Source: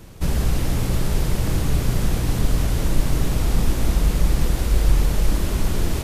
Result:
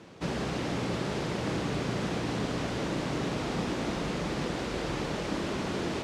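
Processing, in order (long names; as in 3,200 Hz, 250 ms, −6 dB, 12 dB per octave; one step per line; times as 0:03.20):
high-pass filter 220 Hz 12 dB per octave
high-frequency loss of the air 120 metres
level −1 dB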